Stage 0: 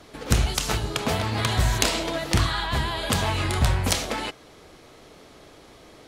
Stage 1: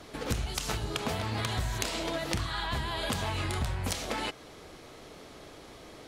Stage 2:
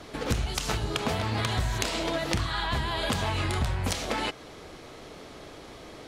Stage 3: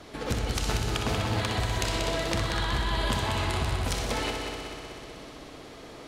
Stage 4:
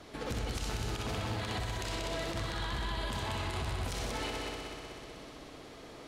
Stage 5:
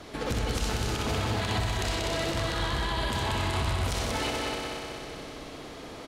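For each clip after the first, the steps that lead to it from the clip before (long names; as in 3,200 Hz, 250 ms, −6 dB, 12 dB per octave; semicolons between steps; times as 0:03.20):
downward compressor 6 to 1, threshold −29 dBFS, peak gain reduction 13.5 dB
high-shelf EQ 9,300 Hz −6.5 dB; level +4 dB
echo machine with several playback heads 62 ms, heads first and third, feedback 74%, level −7 dB; level −2.5 dB
brickwall limiter −22 dBFS, peak gain reduction 10.5 dB; level −4.5 dB
single-tap delay 280 ms −7.5 dB; level +6.5 dB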